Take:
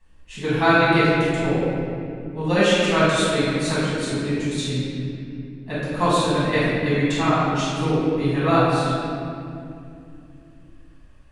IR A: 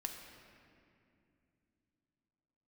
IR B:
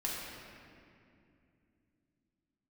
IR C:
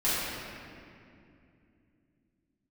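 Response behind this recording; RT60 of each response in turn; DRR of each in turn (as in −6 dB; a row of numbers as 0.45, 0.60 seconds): C; 2.6, 2.6, 2.5 seconds; 3.0, −4.5, −11.5 decibels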